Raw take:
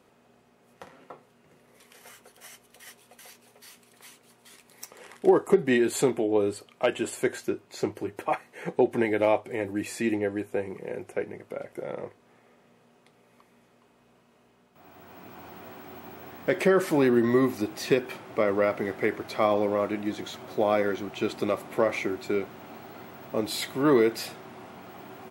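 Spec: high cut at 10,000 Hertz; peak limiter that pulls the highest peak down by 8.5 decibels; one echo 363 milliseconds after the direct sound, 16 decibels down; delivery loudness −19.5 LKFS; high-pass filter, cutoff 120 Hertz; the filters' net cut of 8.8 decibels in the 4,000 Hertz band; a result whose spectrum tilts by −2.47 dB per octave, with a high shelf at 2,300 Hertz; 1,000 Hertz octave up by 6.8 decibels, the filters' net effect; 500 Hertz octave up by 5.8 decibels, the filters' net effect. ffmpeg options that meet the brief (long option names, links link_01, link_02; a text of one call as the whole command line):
ffmpeg -i in.wav -af "highpass=120,lowpass=10000,equalizer=frequency=500:width_type=o:gain=6,equalizer=frequency=1000:width_type=o:gain=8,highshelf=frequency=2300:gain=-4.5,equalizer=frequency=4000:width_type=o:gain=-7.5,alimiter=limit=-11.5dB:level=0:latency=1,aecho=1:1:363:0.158,volume=5dB" out.wav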